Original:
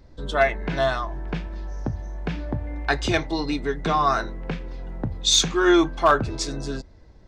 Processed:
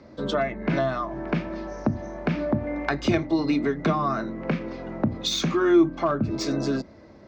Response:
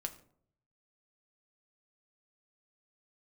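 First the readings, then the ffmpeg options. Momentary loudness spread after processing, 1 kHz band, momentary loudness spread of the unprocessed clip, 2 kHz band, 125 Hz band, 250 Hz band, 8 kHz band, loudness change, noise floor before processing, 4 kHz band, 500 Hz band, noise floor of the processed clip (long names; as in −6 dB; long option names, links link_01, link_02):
9 LU, −5.5 dB, 15 LU, −5.5 dB, +0.5 dB, +3.0 dB, −11.5 dB, −2.0 dB, −48 dBFS, −7.5 dB, −1.0 dB, −48 dBFS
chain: -filter_complex "[0:a]highpass=120,equalizer=frequency=230:width_type=q:width=4:gain=9,equalizer=frequency=330:width_type=q:width=4:gain=6,equalizer=frequency=600:width_type=q:width=4:gain=9,equalizer=frequency=1200:width_type=q:width=4:gain=7,equalizer=frequency=2200:width_type=q:width=4:gain=5,equalizer=frequency=3500:width_type=q:width=4:gain=-3,lowpass=frequency=6400:width=0.5412,lowpass=frequency=6400:width=1.3066,bandreject=frequency=60:width_type=h:width=6,bandreject=frequency=120:width_type=h:width=6,bandreject=frequency=180:width_type=h:width=6,bandreject=frequency=240:width_type=h:width=6,bandreject=frequency=300:width_type=h:width=6,bandreject=frequency=360:width_type=h:width=6,acrossover=split=4700[link_01][link_02];[link_02]asoftclip=type=tanh:threshold=-30dB[link_03];[link_01][link_03]amix=inputs=2:normalize=0,acrossover=split=250[link_04][link_05];[link_05]acompressor=threshold=-29dB:ratio=6[link_06];[link_04][link_06]amix=inputs=2:normalize=0,volume=4dB"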